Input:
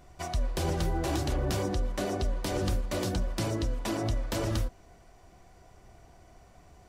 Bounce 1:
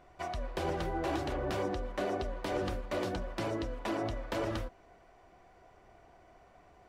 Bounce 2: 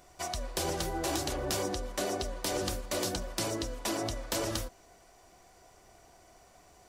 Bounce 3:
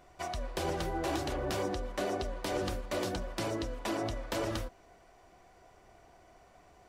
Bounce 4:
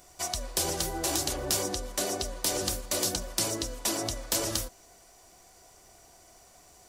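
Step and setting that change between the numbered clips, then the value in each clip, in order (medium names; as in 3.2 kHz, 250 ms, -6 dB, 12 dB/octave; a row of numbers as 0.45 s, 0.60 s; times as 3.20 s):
tone controls, treble: -14 dB, +6 dB, -5 dB, +15 dB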